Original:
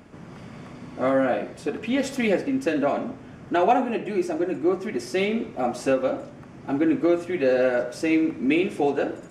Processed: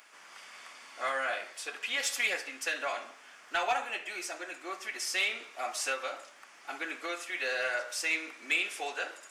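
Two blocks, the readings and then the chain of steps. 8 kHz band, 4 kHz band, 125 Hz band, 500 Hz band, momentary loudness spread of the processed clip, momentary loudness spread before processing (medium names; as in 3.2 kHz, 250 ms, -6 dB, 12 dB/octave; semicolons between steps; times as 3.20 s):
+5.5 dB, +3.0 dB, under -30 dB, -17.0 dB, 18 LU, 19 LU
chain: high-pass 1.2 kHz 12 dB/octave; tilt EQ +2 dB/octave; saturation -19 dBFS, distortion -20 dB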